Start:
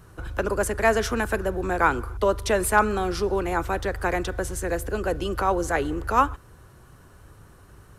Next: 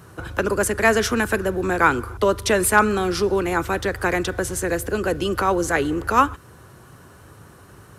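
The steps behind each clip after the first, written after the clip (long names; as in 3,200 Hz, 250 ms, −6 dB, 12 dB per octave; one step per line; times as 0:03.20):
high-pass filter 99 Hz 12 dB per octave
dynamic equaliser 730 Hz, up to −6 dB, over −35 dBFS, Q 1.1
level +6.5 dB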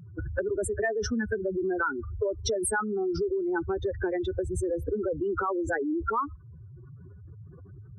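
expanding power law on the bin magnitudes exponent 3.8
downward compressor 6 to 1, threshold −26 dBFS, peak gain reduction 13.5 dB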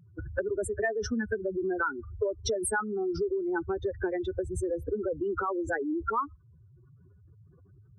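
expander for the loud parts 1.5 to 1, over −44 dBFS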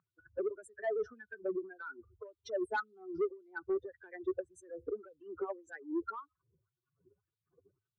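LFO wah 1.8 Hz 370–3,900 Hz, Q 3.9
soft clipping −28 dBFS, distortion −17 dB
level +2 dB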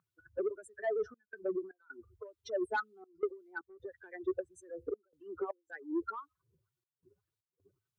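gate pattern "xxxxxx.xx." 79 BPM −24 dB
level +1 dB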